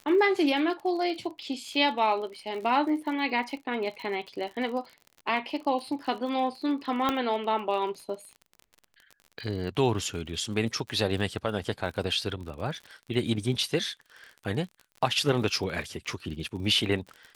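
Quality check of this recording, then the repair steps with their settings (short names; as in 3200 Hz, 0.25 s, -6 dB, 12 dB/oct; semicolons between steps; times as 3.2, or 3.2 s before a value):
crackle 44/s -37 dBFS
7.09 pop -12 dBFS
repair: de-click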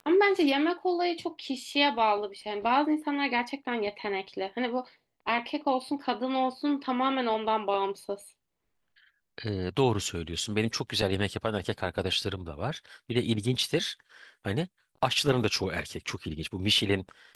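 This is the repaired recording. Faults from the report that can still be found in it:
none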